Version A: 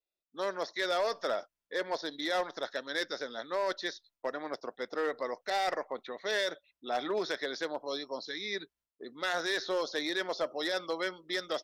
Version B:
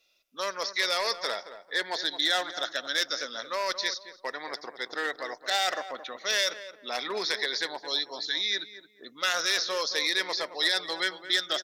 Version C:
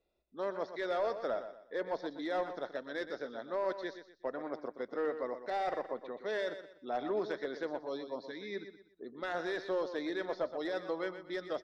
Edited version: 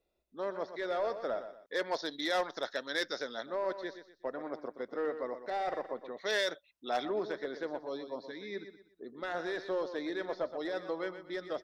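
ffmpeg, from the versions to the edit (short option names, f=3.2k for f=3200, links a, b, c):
-filter_complex "[0:a]asplit=2[a][b];[2:a]asplit=3[c][d][e];[c]atrim=end=1.662[f];[a]atrim=start=1.658:end=3.462[g];[d]atrim=start=3.458:end=6.182[h];[b]atrim=start=6.178:end=7.052[i];[e]atrim=start=7.048[j];[f][g]acrossfade=d=0.004:c1=hsin:c2=hsin[k];[k][h]acrossfade=d=0.004:c1=hsin:c2=hsin[l];[l][i]acrossfade=d=0.004:c1=hsin:c2=hsin[m];[m][j]acrossfade=d=0.004:c1=hsin:c2=hsin"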